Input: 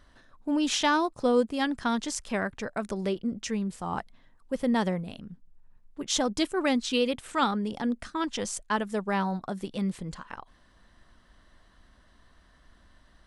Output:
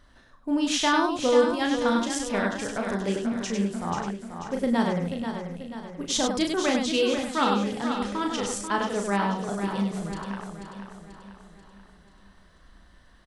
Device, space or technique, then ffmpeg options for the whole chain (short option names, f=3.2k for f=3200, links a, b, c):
slapback doubling: -filter_complex "[0:a]asplit=3[a][b][c];[b]adelay=35,volume=-5dB[d];[c]adelay=99,volume=-5dB[e];[a][d][e]amix=inputs=3:normalize=0,aecho=1:1:487|974|1461|1948|2435|2922:0.398|0.195|0.0956|0.0468|0.023|0.0112"